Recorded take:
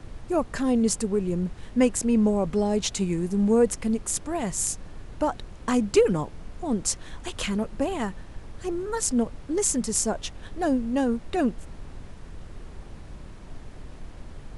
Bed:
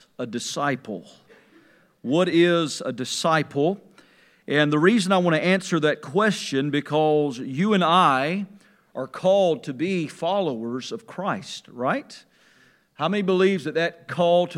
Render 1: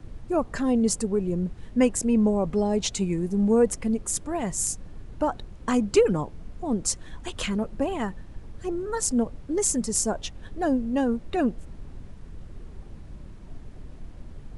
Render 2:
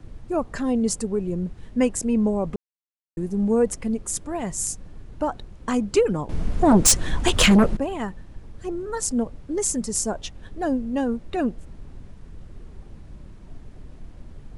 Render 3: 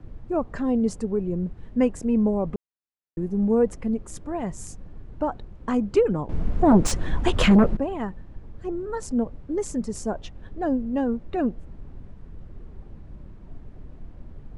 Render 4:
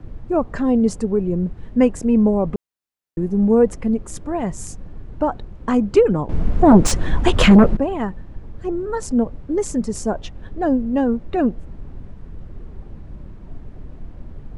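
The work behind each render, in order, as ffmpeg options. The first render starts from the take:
-af "afftdn=nr=7:nf=-43"
-filter_complex "[0:a]asettb=1/sr,asplit=3[s0][s1][s2];[s0]atrim=end=6.294[s3];[s1]atrim=start=6.29:end=7.77,asetpts=PTS-STARTPTS,afade=t=in:d=0.004:c=qsin,afade=t=out:st=1.476:d=0.004:c=qsin,aeval=exprs='0.316*sin(PI/2*3.98*val(0)/0.316)':c=same[s4];[s2]atrim=start=7.766[s5];[s3][s4]acrossfade=d=0.004:c1=hsin:c2=qsin[s6];[s6][s5]acrossfade=d=0.004:c1=qsin:c2=hsin,asplit=3[s7][s8][s9];[s7]atrim=end=2.56,asetpts=PTS-STARTPTS,afade=t=out:st=2.556:d=0.004:c=hsin[s10];[s8]atrim=start=2.56:end=3.17,asetpts=PTS-STARTPTS,volume=0[s11];[s9]atrim=start=3.17,asetpts=PTS-STARTPTS,afade=t=in:d=0.004:c=hsin[s12];[s10][s11][s12]concat=n=3:v=0:a=1"
-af "lowpass=f=1400:p=1"
-af "volume=2"

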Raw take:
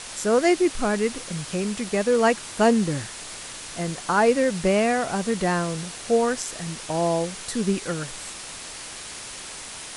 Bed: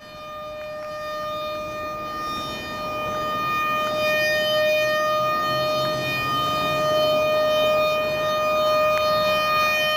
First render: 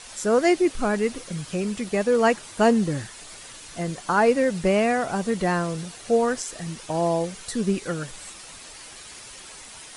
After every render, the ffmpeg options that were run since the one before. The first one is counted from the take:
-af "afftdn=nr=8:nf=-38"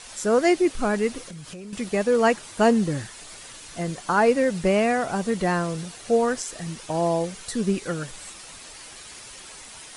-filter_complex "[0:a]asettb=1/sr,asplit=3[s0][s1][s2];[s0]atrim=end=1.234[s3];[s1]atrim=start=1.23:end=1.73,asetpts=PTS-STARTPTS,afade=t=in:d=0.004:c=qsin,afade=t=out:st=0.496:d=0.004:c=qsin,acompressor=threshold=0.0158:ratio=6:attack=3.2:release=140:knee=1:detection=peak[s4];[s2]atrim=start=1.726[s5];[s3][s4]acrossfade=d=0.004:c1=hsin:c2=qsin[s6];[s6][s5]acrossfade=d=0.004:c1=qsin:c2=hsin"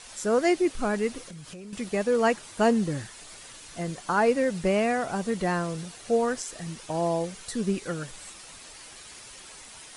-af "volume=0.668"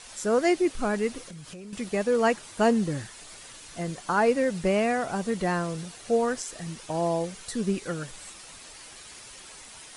-af anull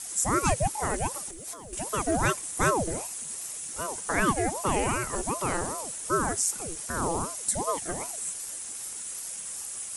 -af "aexciter=amount=7.9:drive=2.7:freq=6400,aeval=exprs='val(0)*sin(2*PI*510*n/s+510*0.7/2.6*sin(2*PI*2.6*n/s))':c=same"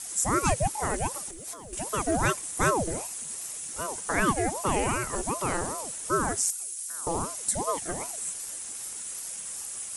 -filter_complex "[0:a]asettb=1/sr,asplit=3[s0][s1][s2];[s0]atrim=end=6.504[s3];[s1]atrim=start=6.5:end=7.07,asetpts=PTS-STARTPTS,afade=t=in:d=0.004:c=qsin,afade=t=out:st=0.566:d=0.004:c=qsin,aderivative[s4];[s2]atrim=start=7.066[s5];[s3][s4]acrossfade=d=0.004:c1=hsin:c2=qsin[s6];[s6][s5]acrossfade=d=0.004:c1=qsin:c2=hsin"

